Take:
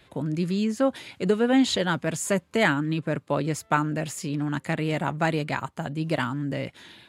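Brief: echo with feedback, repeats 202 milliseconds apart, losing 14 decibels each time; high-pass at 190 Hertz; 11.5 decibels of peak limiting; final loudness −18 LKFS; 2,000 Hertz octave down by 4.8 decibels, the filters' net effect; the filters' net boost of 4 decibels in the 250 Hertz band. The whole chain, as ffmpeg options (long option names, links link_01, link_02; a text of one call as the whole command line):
ffmpeg -i in.wav -af "highpass=190,equalizer=frequency=250:width_type=o:gain=6.5,equalizer=frequency=2000:width_type=o:gain=-6.5,alimiter=limit=-18.5dB:level=0:latency=1,aecho=1:1:202|404:0.2|0.0399,volume=10.5dB" out.wav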